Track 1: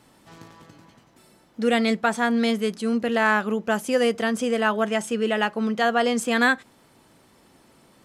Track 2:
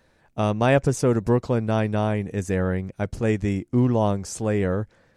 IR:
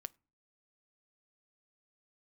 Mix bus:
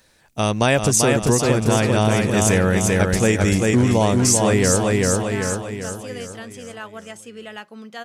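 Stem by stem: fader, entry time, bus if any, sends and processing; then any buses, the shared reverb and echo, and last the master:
−16.0 dB, 2.15 s, send −8.5 dB, no echo send, no processing
−0.5 dB, 0.00 s, no send, echo send −4 dB, high-shelf EQ 3,100 Hz +8 dB; automatic gain control gain up to 11.5 dB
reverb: on, RT60 0.35 s, pre-delay 5 ms
echo: repeating echo 391 ms, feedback 50%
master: high-shelf EQ 2,500 Hz +8.5 dB; downward compressor 4 to 1, threshold −13 dBFS, peak gain reduction 6 dB

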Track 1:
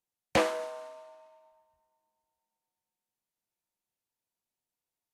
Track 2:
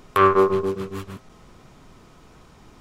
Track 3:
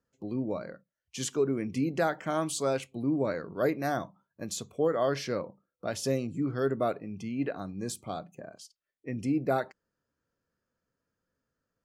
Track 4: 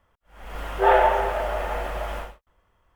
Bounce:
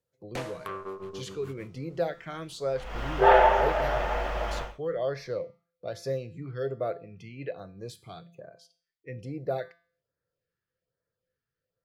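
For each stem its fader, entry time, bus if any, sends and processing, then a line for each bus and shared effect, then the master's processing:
−0.5 dB, 0.00 s, no send, tube saturation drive 25 dB, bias 0.5; automatic ducking −14 dB, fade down 1.10 s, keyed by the third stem
−14.5 dB, 0.50 s, no send, downward compressor 6 to 1, threshold −20 dBFS, peak gain reduction 9.5 dB
−0.5 dB, 0.00 s, no send, tuned comb filter 170 Hz, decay 0.47 s, harmonics all, mix 60%; auto-filter notch sine 1.2 Hz 520–3,100 Hz; graphic EQ with 10 bands 125 Hz +8 dB, 250 Hz −10 dB, 500 Hz +11 dB, 1,000 Hz −4 dB, 2,000 Hz +7 dB, 4,000 Hz +6 dB, 8,000 Hz −9 dB
−1.0 dB, 2.40 s, no send, high shelf with overshoot 7,400 Hz −9.5 dB, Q 1.5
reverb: not used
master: no processing

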